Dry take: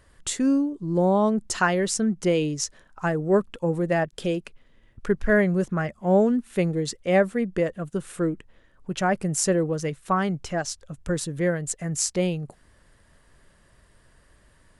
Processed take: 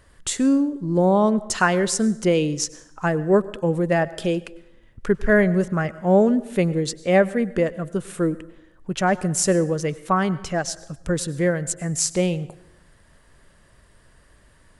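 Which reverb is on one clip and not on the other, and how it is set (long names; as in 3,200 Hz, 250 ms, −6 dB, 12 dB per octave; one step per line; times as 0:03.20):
dense smooth reverb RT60 0.84 s, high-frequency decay 0.7×, pre-delay 85 ms, DRR 18 dB
level +3 dB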